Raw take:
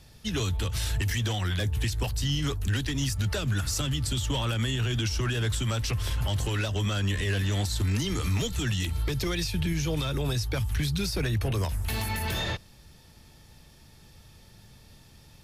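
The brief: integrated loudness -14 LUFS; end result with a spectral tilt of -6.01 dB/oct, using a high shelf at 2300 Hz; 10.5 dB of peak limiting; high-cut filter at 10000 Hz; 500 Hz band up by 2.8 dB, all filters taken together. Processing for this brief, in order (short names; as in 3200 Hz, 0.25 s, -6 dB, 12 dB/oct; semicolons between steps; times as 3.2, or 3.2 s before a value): LPF 10000 Hz; bell 500 Hz +4 dB; high shelf 2300 Hz -9 dB; gain +22.5 dB; limiter -6.5 dBFS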